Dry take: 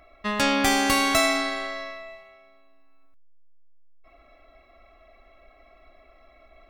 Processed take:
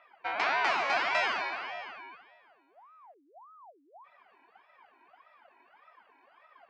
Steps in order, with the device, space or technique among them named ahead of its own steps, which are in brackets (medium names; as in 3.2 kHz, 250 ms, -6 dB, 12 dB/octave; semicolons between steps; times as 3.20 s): voice changer toy (ring modulator with a swept carrier 780 Hz, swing 65%, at 1.7 Hz; cabinet simulation 460–4600 Hz, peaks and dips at 500 Hz -6 dB, 710 Hz +9 dB, 1 kHz +5 dB, 1.5 kHz +3 dB, 2.3 kHz +7 dB, 3.5 kHz -6 dB); trim -6.5 dB